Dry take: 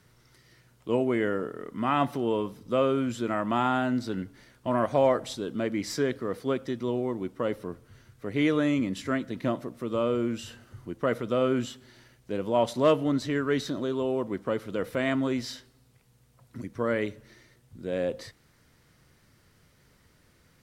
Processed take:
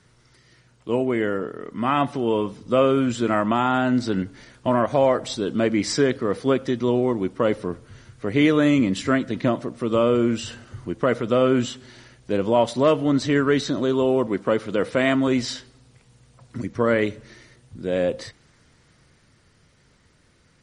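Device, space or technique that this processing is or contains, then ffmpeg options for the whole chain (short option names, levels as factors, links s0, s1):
low-bitrate web radio: -filter_complex "[0:a]asettb=1/sr,asplit=3[s0][s1][s2];[s0]atrim=end=14.274[s3];[s1]atrim=start=14.27:end=15.28,asetpts=PTS-STARTPTS,afade=t=in:d=0.004:c=qsin,afade=t=out:st=1.006:d=0.004:c=qsin,highpass=f=120:p=1[s4];[s2]atrim=start=15.276[s5];[s3][s4]acrossfade=d=0.004:c1=hsin:c2=qsin[s6];[s6][s5]acrossfade=d=0.004:c1=qsin:c2=hsin,dynaudnorm=f=160:g=31:m=1.88,alimiter=limit=0.282:level=0:latency=1:release=431,volume=1.5" -ar 44100 -c:a libmp3lame -b:a 40k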